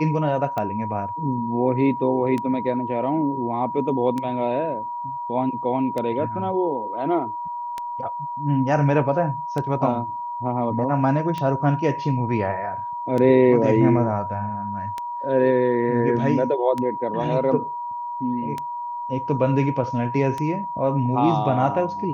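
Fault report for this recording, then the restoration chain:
tick 33 1/3 rpm -14 dBFS
whine 960 Hz -27 dBFS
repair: de-click; band-stop 960 Hz, Q 30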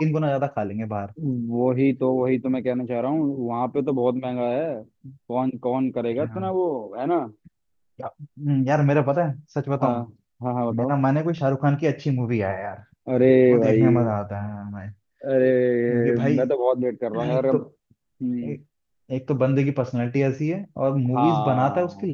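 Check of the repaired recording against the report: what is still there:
nothing left

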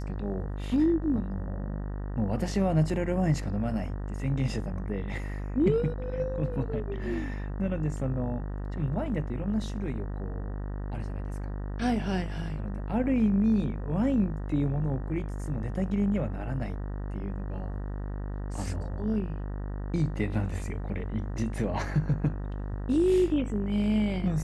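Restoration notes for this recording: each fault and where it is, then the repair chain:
buzz 50 Hz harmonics 38 -34 dBFS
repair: de-hum 50 Hz, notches 38

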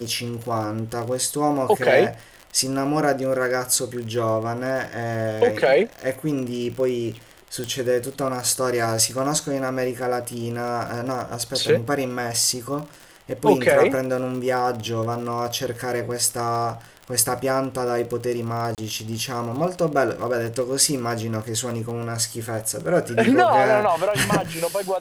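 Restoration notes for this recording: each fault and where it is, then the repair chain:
crackle 46 per s -28 dBFS
7.64 s: pop -14 dBFS
18.75–18.78 s: dropout 28 ms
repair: de-click; interpolate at 18.75 s, 28 ms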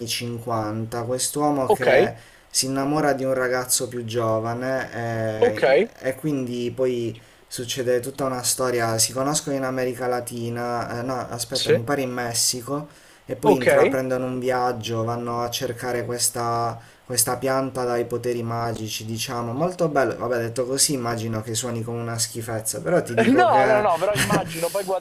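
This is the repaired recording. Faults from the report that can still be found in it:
nothing left

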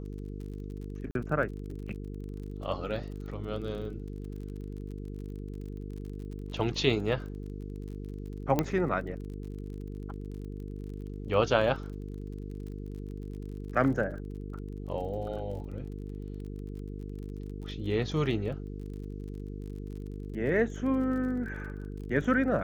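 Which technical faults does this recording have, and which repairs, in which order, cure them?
buzz 50 Hz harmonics 9 -39 dBFS
crackle 39 per s -41 dBFS
1.11–1.15 s: dropout 42 ms
8.59 s: pop -12 dBFS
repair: de-click; de-hum 50 Hz, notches 9; interpolate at 1.11 s, 42 ms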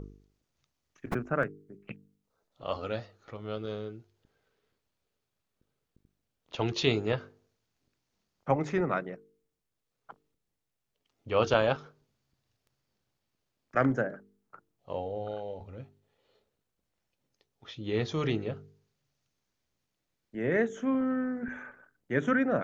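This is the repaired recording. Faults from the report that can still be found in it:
nothing left

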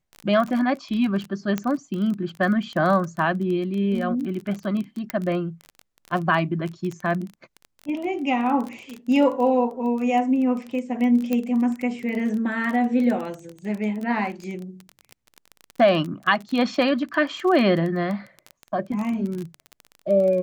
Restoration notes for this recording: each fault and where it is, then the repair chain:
crackle 21 per s -27 dBFS
1.58 s: pop -12 dBFS
5.10 s: pop -11 dBFS
11.33 s: pop -12 dBFS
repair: de-click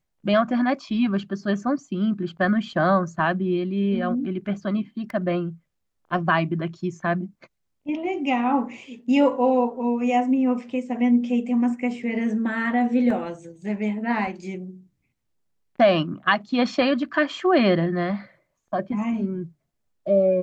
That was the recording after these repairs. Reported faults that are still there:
5.10 s: pop

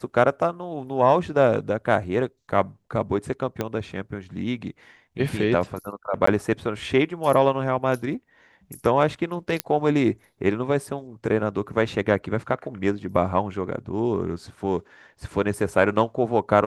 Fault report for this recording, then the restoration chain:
3.61 s: pop -11 dBFS
6.26–6.27 s: dropout 14 ms
9.60 s: pop -6 dBFS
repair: de-click; interpolate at 6.26 s, 14 ms

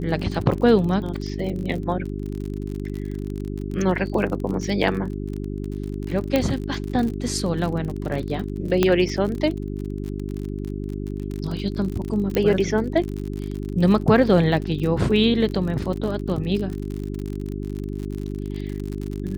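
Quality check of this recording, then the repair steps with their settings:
crackle 47 per s -28 dBFS
hum 50 Hz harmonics 8 -29 dBFS
6.36 s: pop -7 dBFS
8.83 s: pop -4 dBFS
12.35 s: pop -10 dBFS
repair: de-click; de-hum 50 Hz, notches 8

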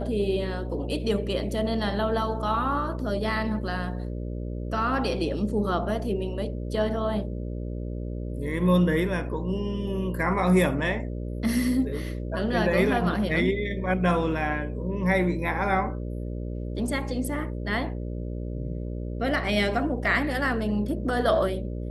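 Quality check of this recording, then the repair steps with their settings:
buzz 60 Hz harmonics 10 -32 dBFS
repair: de-hum 60 Hz, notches 10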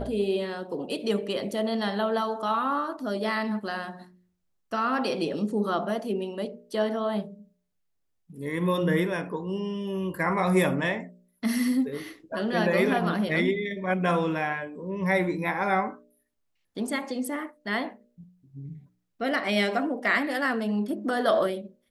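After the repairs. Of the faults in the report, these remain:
nothing left

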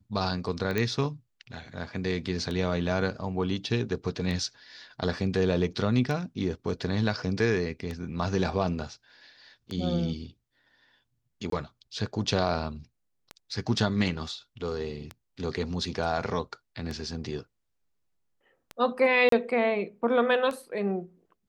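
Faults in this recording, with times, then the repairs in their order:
tick 33 1/3 rpm -21 dBFS
0.78 s: pop -14 dBFS
11.50–11.52 s: dropout 23 ms
19.29–19.32 s: dropout 33 ms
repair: de-click; interpolate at 11.50 s, 23 ms; interpolate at 19.29 s, 33 ms

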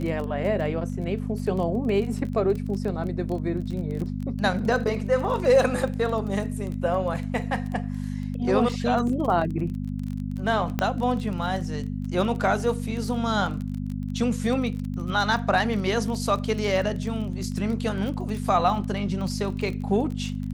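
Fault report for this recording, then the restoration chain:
crackle 21 per s -30 dBFS
hum 50 Hz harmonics 5 -30 dBFS
10.79 s: pop -10 dBFS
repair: de-click; de-hum 50 Hz, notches 5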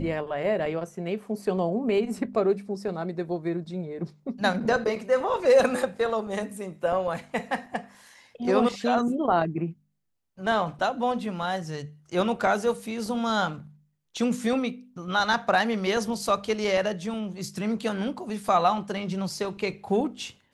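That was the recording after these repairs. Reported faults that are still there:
nothing left

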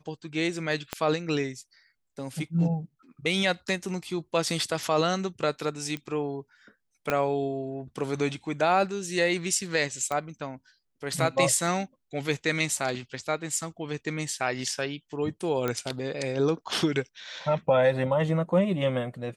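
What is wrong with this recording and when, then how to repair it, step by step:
0.93 s: pop -13 dBFS
5.97 s: pop -21 dBFS
7.10 s: pop -12 dBFS
10.12 s: pop -17 dBFS
15.68 s: pop -14 dBFS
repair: de-click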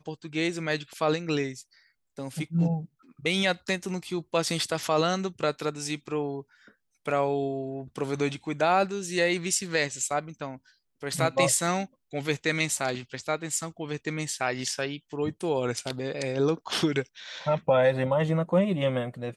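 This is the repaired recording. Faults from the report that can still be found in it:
0.93 s: pop
7.10 s: pop

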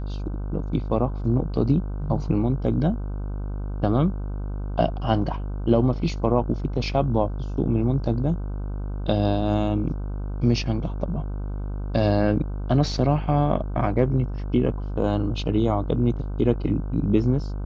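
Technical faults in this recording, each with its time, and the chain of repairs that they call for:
buzz 50 Hz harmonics 31 -29 dBFS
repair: de-hum 50 Hz, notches 31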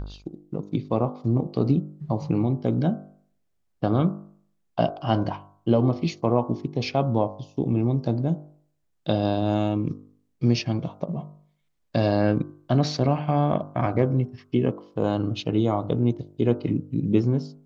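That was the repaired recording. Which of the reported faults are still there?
nothing left

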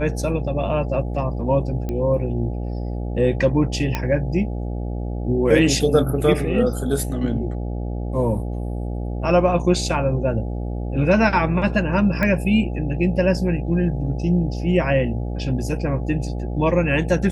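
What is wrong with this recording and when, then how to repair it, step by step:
buzz 60 Hz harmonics 14 -26 dBFS
1.89 s: pop -15 dBFS
3.95 s: pop -8 dBFS
12.23 s: pop -10 dBFS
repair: de-click; de-hum 60 Hz, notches 14

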